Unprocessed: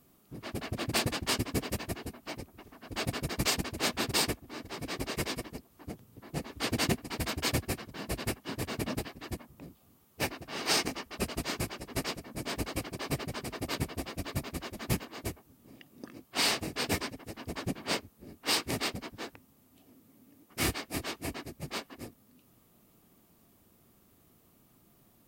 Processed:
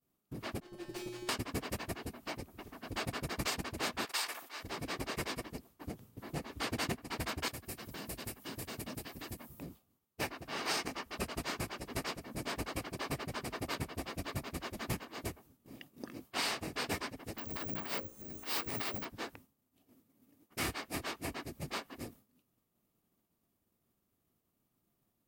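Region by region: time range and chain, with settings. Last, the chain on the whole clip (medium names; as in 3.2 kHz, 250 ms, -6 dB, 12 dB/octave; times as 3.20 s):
0.60–1.29 s: comb filter that takes the minimum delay 5.6 ms + peaking EQ 350 Hz +13 dB 0.67 oct + feedback comb 120 Hz, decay 1.1 s, harmonics odd, mix 90%
4.05–4.63 s: high-pass 920 Hz + decay stretcher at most 120 dB/s
7.48–9.63 s: treble shelf 7.7 kHz +12 dB + compression 2:1, threshold -46 dBFS
17.38–19.05 s: hum notches 60/120/180/240/300/360/420/480/540/600 Hz + transient shaper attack -12 dB, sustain +7 dB + careless resampling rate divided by 2×, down none, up zero stuff
whole clip: expander -50 dBFS; dynamic bell 1.2 kHz, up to +5 dB, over -45 dBFS, Q 0.73; compression 2:1, threshold -47 dBFS; trim +4 dB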